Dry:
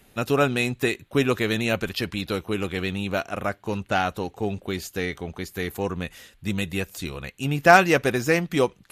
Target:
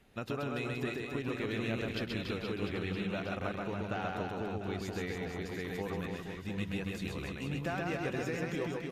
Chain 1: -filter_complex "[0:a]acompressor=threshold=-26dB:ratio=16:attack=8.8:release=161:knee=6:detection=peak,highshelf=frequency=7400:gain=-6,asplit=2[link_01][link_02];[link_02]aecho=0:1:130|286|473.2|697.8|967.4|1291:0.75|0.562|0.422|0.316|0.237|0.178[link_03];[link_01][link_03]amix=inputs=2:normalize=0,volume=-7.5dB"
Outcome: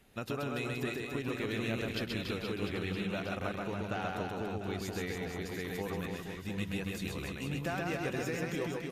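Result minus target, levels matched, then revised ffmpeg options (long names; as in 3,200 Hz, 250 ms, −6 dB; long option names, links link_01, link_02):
8,000 Hz band +4.5 dB
-filter_complex "[0:a]acompressor=threshold=-26dB:ratio=16:attack=8.8:release=161:knee=6:detection=peak,highshelf=frequency=7400:gain=-16,asplit=2[link_01][link_02];[link_02]aecho=0:1:130|286|473.2|697.8|967.4|1291:0.75|0.562|0.422|0.316|0.237|0.178[link_03];[link_01][link_03]amix=inputs=2:normalize=0,volume=-7.5dB"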